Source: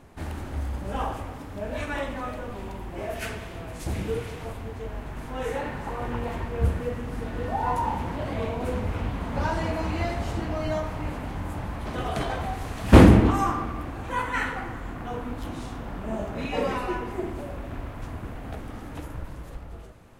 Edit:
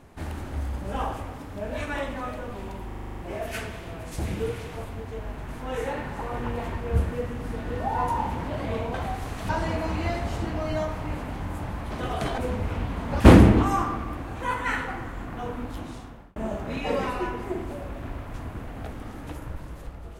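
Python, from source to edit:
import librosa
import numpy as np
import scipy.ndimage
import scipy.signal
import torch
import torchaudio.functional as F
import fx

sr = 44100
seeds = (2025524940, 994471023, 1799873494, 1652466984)

y = fx.edit(x, sr, fx.stutter(start_s=2.87, slice_s=0.04, count=9),
    fx.swap(start_s=8.62, length_s=0.82, other_s=12.33, other_length_s=0.55),
    fx.fade_out_span(start_s=15.15, length_s=0.89, curve='qsin'), tone=tone)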